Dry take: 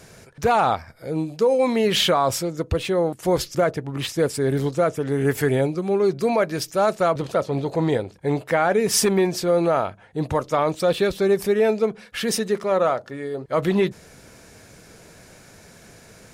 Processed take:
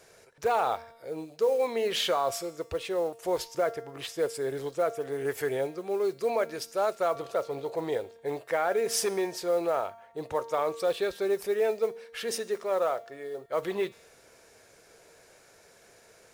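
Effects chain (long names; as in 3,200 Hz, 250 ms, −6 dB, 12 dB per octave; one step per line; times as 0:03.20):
low shelf with overshoot 310 Hz −9.5 dB, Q 1.5
noise that follows the level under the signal 29 dB
tuned comb filter 230 Hz, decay 1 s, mix 60%
level −1.5 dB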